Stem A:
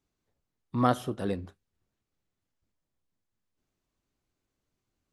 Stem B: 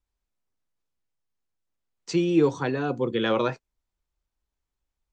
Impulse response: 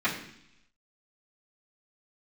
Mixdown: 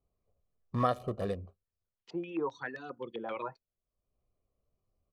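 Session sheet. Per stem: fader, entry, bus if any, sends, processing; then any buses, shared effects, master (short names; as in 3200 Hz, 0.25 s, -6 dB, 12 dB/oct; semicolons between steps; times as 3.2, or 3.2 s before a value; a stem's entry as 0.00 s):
+2.0 dB, 0.00 s, no send, Wiener smoothing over 25 samples; comb 1.7 ms, depth 64%; compressor 4:1, threshold -26 dBFS, peak gain reduction 8.5 dB; auto duck -19 dB, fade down 0.95 s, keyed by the second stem
-14.0 dB, 0.00 s, no send, reverb removal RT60 1.4 s; stepped low-pass 7.6 Hz 790–5200 Hz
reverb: off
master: bell 140 Hz -5 dB 0.92 oct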